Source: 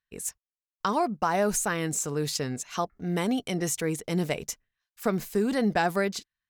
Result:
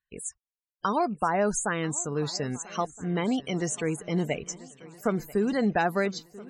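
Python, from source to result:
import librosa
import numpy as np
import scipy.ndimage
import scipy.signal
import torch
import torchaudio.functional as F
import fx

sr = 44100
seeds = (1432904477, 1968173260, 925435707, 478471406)

y = fx.spec_topn(x, sr, count=64)
y = fx.echo_swing(y, sr, ms=1319, ratio=3, feedback_pct=42, wet_db=-20)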